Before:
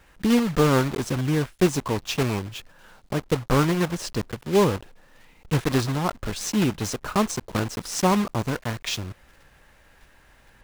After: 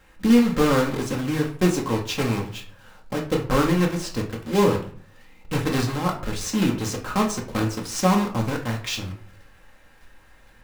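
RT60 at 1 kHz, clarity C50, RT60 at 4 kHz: 0.50 s, 10.0 dB, 0.30 s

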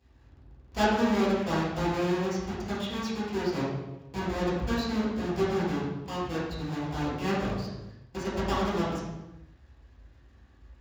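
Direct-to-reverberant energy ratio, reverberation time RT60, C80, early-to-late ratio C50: -12.0 dB, 1.1 s, 2.5 dB, -0.5 dB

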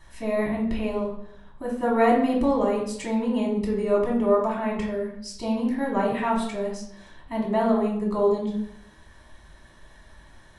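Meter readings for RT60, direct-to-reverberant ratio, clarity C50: 0.70 s, -4.0 dB, 4.5 dB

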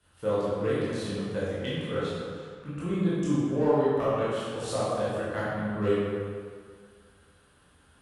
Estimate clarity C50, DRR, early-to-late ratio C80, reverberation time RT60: -3.5 dB, -10.5 dB, -1.0 dB, 2.0 s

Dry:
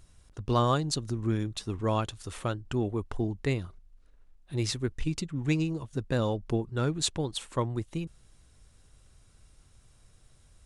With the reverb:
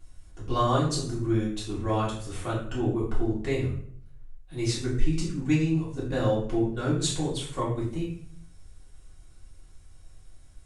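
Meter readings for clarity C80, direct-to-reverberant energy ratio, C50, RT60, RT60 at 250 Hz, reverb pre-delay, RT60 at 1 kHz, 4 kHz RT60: 8.5 dB, -9.0 dB, 4.5 dB, 0.60 s, 0.75 s, 3 ms, 0.55 s, 0.45 s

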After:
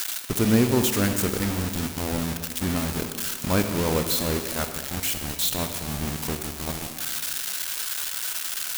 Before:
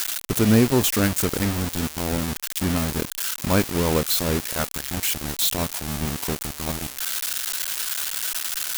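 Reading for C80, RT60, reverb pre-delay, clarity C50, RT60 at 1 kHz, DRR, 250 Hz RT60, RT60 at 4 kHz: 8.5 dB, 2.0 s, 34 ms, 7.0 dB, 2.0 s, 6.5 dB, 1.9 s, 1.5 s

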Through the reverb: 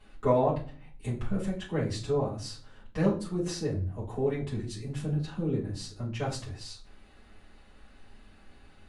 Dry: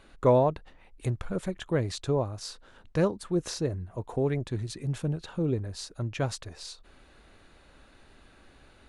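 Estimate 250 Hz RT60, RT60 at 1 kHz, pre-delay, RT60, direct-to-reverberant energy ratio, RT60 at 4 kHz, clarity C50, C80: 0.70 s, 0.35 s, 5 ms, 0.40 s, -8.5 dB, 0.35 s, 9.0 dB, 15.0 dB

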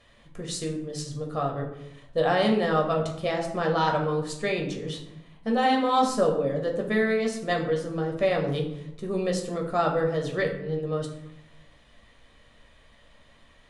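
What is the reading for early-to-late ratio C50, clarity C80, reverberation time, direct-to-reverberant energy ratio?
7.0 dB, 10.0 dB, 0.85 s, 0.5 dB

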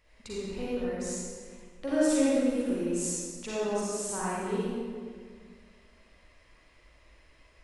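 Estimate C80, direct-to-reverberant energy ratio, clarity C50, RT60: -2.5 dB, -9.0 dB, -6.0 dB, 1.8 s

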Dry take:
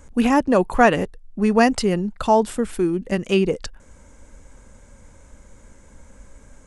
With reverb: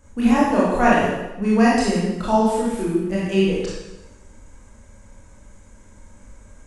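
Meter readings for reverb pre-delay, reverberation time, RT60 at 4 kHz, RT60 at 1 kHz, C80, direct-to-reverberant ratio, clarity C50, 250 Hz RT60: 18 ms, 0.95 s, 0.90 s, 0.95 s, 2.0 dB, -7.0 dB, -1.5 dB, 1.0 s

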